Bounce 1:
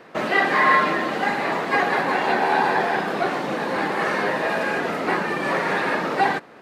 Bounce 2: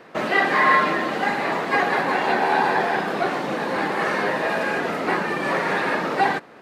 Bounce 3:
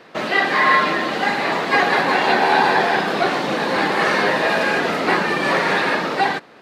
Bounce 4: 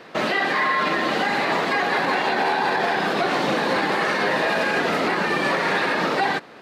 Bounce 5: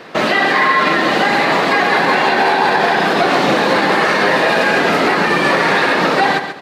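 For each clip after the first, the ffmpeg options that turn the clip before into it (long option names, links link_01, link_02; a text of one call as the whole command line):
ffmpeg -i in.wav -af anull out.wav
ffmpeg -i in.wav -af "equalizer=frequency=4100:width=0.97:gain=6.5,dynaudnorm=framelen=180:gausssize=9:maxgain=4.5dB" out.wav
ffmpeg -i in.wav -af "alimiter=limit=-14.5dB:level=0:latency=1:release=98,volume=2dB" out.wav
ffmpeg -i in.wav -af "aecho=1:1:135|270|405:0.355|0.0887|0.0222,volume=7.5dB" out.wav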